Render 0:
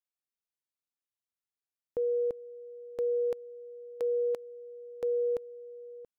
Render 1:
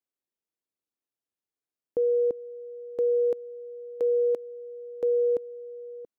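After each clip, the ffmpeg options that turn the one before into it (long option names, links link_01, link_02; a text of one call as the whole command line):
ffmpeg -i in.wav -af "equalizer=frequency=330:width_type=o:width=2.2:gain=12,volume=-4dB" out.wav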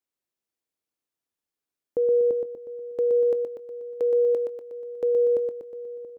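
ffmpeg -i in.wav -af "aecho=1:1:121|242|363|484|605|726|847:0.562|0.304|0.164|0.0885|0.0478|0.0258|0.0139,volume=1.5dB" out.wav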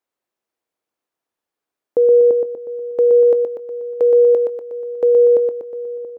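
ffmpeg -i in.wav -af "equalizer=frequency=760:width=0.36:gain=11" out.wav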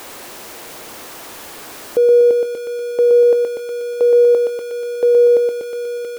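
ffmpeg -i in.wav -af "aeval=exprs='val(0)+0.5*0.0422*sgn(val(0))':channel_layout=same" out.wav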